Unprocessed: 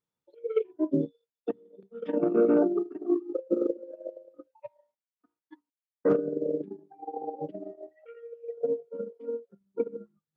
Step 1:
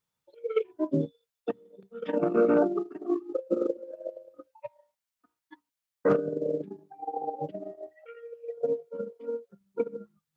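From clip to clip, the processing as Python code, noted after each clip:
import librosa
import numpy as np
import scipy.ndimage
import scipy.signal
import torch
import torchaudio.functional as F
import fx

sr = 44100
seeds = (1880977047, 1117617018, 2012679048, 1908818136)

y = fx.peak_eq(x, sr, hz=330.0, db=-9.5, octaves=1.6)
y = y * 10.0 ** (7.0 / 20.0)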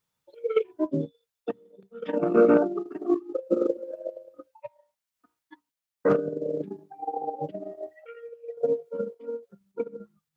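y = fx.tremolo_random(x, sr, seeds[0], hz=3.5, depth_pct=55)
y = y * 10.0 ** (5.0 / 20.0)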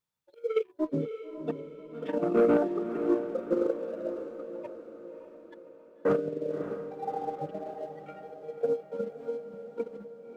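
y = fx.leveller(x, sr, passes=1)
y = fx.echo_diffused(y, sr, ms=588, feedback_pct=52, wet_db=-9.0)
y = y * 10.0 ** (-6.5 / 20.0)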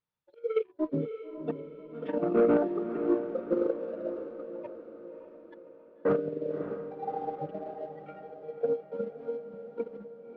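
y = fx.air_absorb(x, sr, metres=220.0)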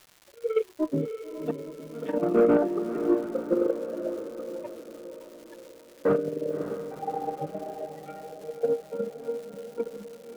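y = x + 10.0 ** (-18.5 / 20.0) * np.pad(x, (int(863 * sr / 1000.0), 0))[:len(x)]
y = fx.dmg_crackle(y, sr, seeds[1], per_s=380.0, level_db=-44.0)
y = y * 10.0 ** (3.0 / 20.0)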